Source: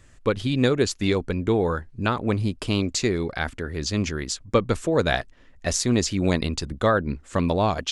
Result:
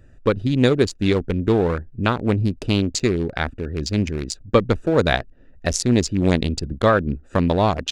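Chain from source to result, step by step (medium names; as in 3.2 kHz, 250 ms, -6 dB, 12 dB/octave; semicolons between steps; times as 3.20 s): local Wiener filter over 41 samples; tape noise reduction on one side only encoder only; trim +4.5 dB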